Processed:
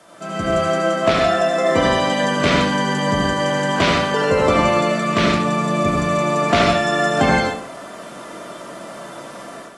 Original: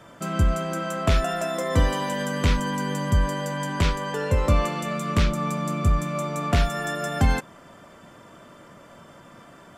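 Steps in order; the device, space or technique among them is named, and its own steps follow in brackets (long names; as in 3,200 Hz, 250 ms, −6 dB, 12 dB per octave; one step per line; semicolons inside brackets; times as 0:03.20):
filmed off a television (band-pass filter 240–6,000 Hz; parametric band 650 Hz +7 dB 0.2 octaves; convolution reverb RT60 0.50 s, pre-delay 69 ms, DRR −0.5 dB; white noise bed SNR 28 dB; automatic gain control gain up to 10 dB; level −1 dB; AAC 32 kbit/s 24,000 Hz)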